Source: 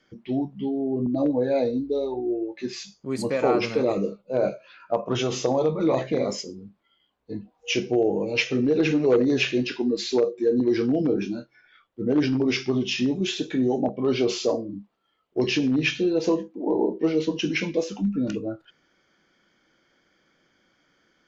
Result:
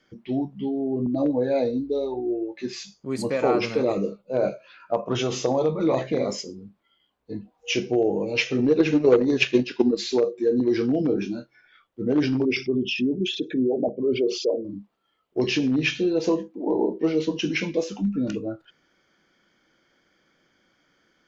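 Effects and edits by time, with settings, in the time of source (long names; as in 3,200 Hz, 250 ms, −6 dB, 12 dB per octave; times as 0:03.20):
0:08.58–0:09.96: transient designer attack +9 dB, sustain −7 dB
0:12.45–0:14.65: spectral envelope exaggerated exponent 2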